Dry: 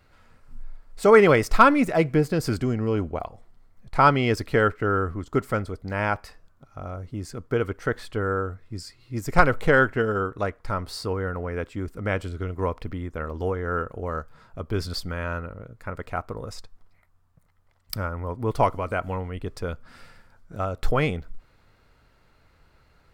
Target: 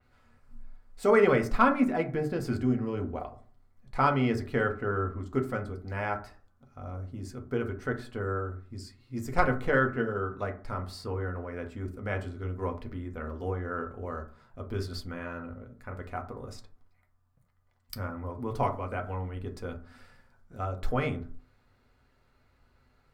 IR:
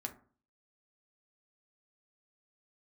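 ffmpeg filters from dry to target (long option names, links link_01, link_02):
-filter_complex "[1:a]atrim=start_sample=2205[link_01];[0:a][link_01]afir=irnorm=-1:irlink=0,adynamicequalizer=threshold=0.00708:dfrequency=3600:dqfactor=0.7:tfrequency=3600:tqfactor=0.7:attack=5:release=100:ratio=0.375:range=4:mode=cutabove:tftype=highshelf,volume=-5.5dB"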